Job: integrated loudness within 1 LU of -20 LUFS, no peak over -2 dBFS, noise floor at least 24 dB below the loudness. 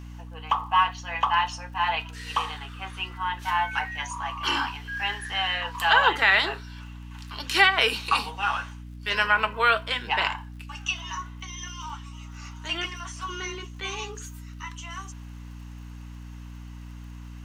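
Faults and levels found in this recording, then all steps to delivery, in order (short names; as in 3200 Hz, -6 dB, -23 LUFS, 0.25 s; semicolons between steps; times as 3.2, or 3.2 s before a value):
ticks 46/s; hum 60 Hz; harmonics up to 300 Hz; hum level -38 dBFS; loudness -25.5 LUFS; peak -4.5 dBFS; loudness target -20.0 LUFS
-> de-click; de-hum 60 Hz, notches 5; gain +5.5 dB; limiter -2 dBFS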